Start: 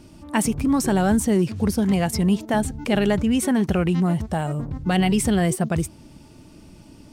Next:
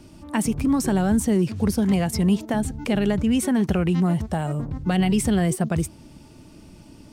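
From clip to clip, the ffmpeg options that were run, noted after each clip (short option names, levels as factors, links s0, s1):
-filter_complex "[0:a]acrossover=split=310[s0][s1];[s1]acompressor=threshold=0.0631:ratio=6[s2];[s0][s2]amix=inputs=2:normalize=0"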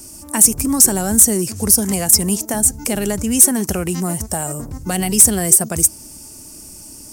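-af "equalizer=f=150:t=o:w=1:g=-6.5,aexciter=amount=6:drive=9.4:freq=5400,aeval=exprs='1.41*sin(PI/2*1.41*val(0)/1.41)':c=same,volume=0.631"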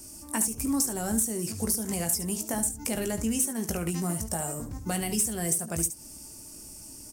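-filter_complex "[0:a]acompressor=threshold=0.141:ratio=6,acrusher=bits=9:mode=log:mix=0:aa=0.000001,asplit=2[s0][s1];[s1]aecho=0:1:18|72:0.398|0.266[s2];[s0][s2]amix=inputs=2:normalize=0,volume=0.376"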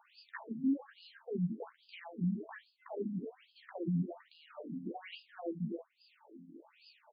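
-filter_complex "[0:a]aecho=1:1:12|45:0.631|0.188,acrossover=split=430|1400[s0][s1][s2];[s0]acompressor=threshold=0.0282:ratio=4[s3];[s1]acompressor=threshold=0.00447:ratio=4[s4];[s2]acompressor=threshold=0.01:ratio=4[s5];[s3][s4][s5]amix=inputs=3:normalize=0,afftfilt=real='re*between(b*sr/1024,200*pow(3600/200,0.5+0.5*sin(2*PI*1.2*pts/sr))/1.41,200*pow(3600/200,0.5+0.5*sin(2*PI*1.2*pts/sr))*1.41)':imag='im*between(b*sr/1024,200*pow(3600/200,0.5+0.5*sin(2*PI*1.2*pts/sr))/1.41,200*pow(3600/200,0.5+0.5*sin(2*PI*1.2*pts/sr))*1.41)':win_size=1024:overlap=0.75,volume=1.33"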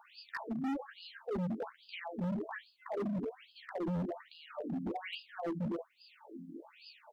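-af "asoftclip=type=hard:threshold=0.0112,volume=2"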